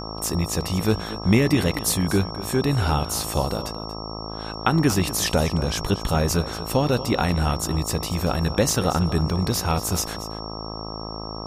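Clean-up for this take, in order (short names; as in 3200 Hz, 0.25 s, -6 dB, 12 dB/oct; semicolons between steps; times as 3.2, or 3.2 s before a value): de-hum 54.2 Hz, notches 24; notch 5500 Hz, Q 30; inverse comb 0.234 s -14.5 dB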